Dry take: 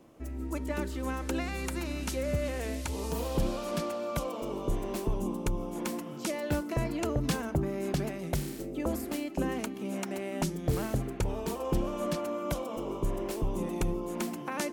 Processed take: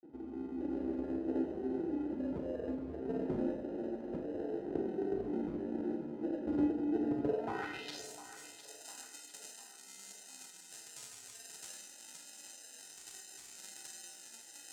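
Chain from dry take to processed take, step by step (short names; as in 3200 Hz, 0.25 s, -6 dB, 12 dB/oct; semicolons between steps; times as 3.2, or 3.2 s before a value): self-modulated delay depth 0.23 ms; notch 580 Hz, Q 12; reverse; upward compressor, threshold -37 dBFS; reverse; flange 0.55 Hz, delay 6.1 ms, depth 9.1 ms, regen +50%; grains; sample-and-hold 39×; band-pass sweep 350 Hz -> 7600 Hz, 7.25–8.06; on a send: split-band echo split 540 Hz, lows 0.259 s, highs 0.703 s, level -13 dB; on the sum: Schroeder reverb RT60 0.39 s, combs from 27 ms, DRR 3.5 dB; gain +6.5 dB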